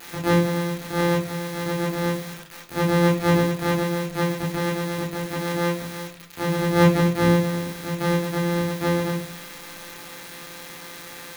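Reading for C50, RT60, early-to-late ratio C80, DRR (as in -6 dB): 8.0 dB, 0.45 s, 13.5 dB, -4.0 dB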